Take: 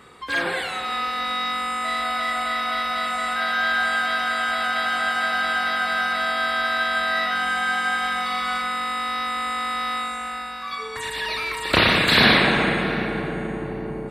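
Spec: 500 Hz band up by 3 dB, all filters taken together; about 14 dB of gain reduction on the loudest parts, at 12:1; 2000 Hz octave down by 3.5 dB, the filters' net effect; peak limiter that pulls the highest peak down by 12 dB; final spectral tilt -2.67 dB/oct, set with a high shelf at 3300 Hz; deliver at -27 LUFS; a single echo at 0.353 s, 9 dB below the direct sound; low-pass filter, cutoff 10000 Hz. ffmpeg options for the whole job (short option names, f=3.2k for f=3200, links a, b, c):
-af "lowpass=10k,equalizer=f=500:t=o:g=4,equalizer=f=2k:t=o:g=-7,highshelf=f=3.3k:g=7,acompressor=threshold=-25dB:ratio=12,alimiter=level_in=2dB:limit=-24dB:level=0:latency=1,volume=-2dB,aecho=1:1:353:0.355,volume=6dB"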